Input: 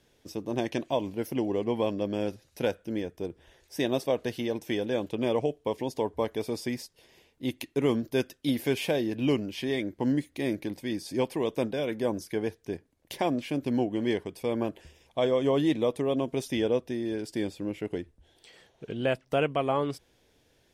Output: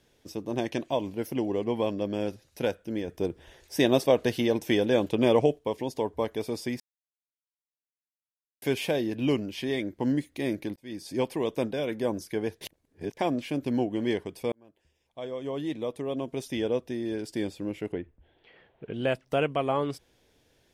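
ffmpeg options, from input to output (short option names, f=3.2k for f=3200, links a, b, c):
-filter_complex "[0:a]asettb=1/sr,asplit=3[a][b][c];[a]atrim=end=17.924[d];[b]atrim=start=17.92:end=18.94,asetpts=PTS-STARTPTS,afade=t=in:d=0.004:c=qsin,afade=t=out:st=1.016:d=0.004:c=qsin,lowpass=f=2.8k:w=0.5412,lowpass=f=2.8k:w=1.3066[e];[c]atrim=start=18.936[f];[d][e]acrossfade=d=0.004:c1=hsin:c2=qsin[g];[g][f]acrossfade=d=0.004:c1=qsin:c2=hsin,asplit=9[h][i][j][k][l][m][n][o][p];[h]atrim=end=3.082[q];[i]atrim=start=3.078:end=5.592,asetpts=PTS-STARTPTS,volume=5.5dB[r];[j]atrim=start=5.588:end=6.8,asetpts=PTS-STARTPTS,afade=t=out:st=1.208:d=0.004:c=hsin[s];[k]atrim=start=6.8:end=8.62,asetpts=PTS-STARTPTS,volume=0[t];[l]atrim=start=8.62:end=10.76,asetpts=PTS-STARTPTS,afade=t=in:d=0.004:c=hsin,afade=t=out:st=2.136:d=0.004:c=hsin[u];[m]atrim=start=10.76:end=12.612,asetpts=PTS-STARTPTS,afade=t=in:d=0.51:c=qsin[v];[n]atrim=start=12.608:end=13.172,asetpts=PTS-STARTPTS,areverse[w];[o]atrim=start=13.168:end=14.52,asetpts=PTS-STARTPTS,afade=t=out:st=1.348:d=0.004:c=hsin[x];[p]atrim=start=14.52,asetpts=PTS-STARTPTS,afade=t=in:d=2.62[y];[q][r]acrossfade=d=0.004:c1=hsin:c2=hsin[z];[s][t][u][v]concat=n=4:v=0:a=1[aa];[z][aa]acrossfade=d=0.004:c1=hsin:c2=hsin[ab];[ab][w]acrossfade=d=0.004:c1=hsin:c2=hsin[ac];[x][y]concat=n=2:v=0:a=1[ad];[ac][ad]acrossfade=d=0.004:c1=hsin:c2=hsin"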